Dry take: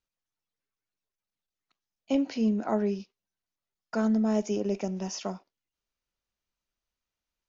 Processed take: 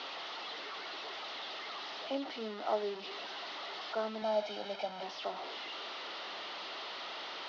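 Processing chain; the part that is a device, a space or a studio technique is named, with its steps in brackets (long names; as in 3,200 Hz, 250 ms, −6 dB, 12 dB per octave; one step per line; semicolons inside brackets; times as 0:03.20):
digital answering machine (band-pass filter 370–3,400 Hz; linear delta modulator 32 kbit/s, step −33 dBFS; loudspeaker in its box 440–4,100 Hz, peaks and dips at 510 Hz −6 dB, 1,000 Hz −4 dB, 1,600 Hz −9 dB, 2,400 Hz −9 dB)
0:04.22–0:05.03: comb filter 1.3 ms, depth 75%
level +1 dB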